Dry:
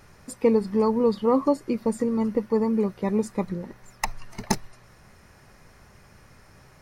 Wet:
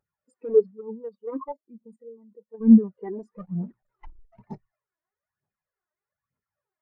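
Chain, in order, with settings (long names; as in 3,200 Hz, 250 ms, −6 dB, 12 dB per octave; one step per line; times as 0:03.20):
0:03.38–0:04.42: each half-wave held at its own peak
low-shelf EQ 190 Hz +4 dB
0:00.71–0:02.61: output level in coarse steps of 18 dB
mid-hump overdrive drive 31 dB, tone 4,600 Hz, clips at −5 dBFS
phase shifter 1.1 Hz, delay 3.3 ms, feedback 50%
every bin expanded away from the loudest bin 2.5 to 1
level −3.5 dB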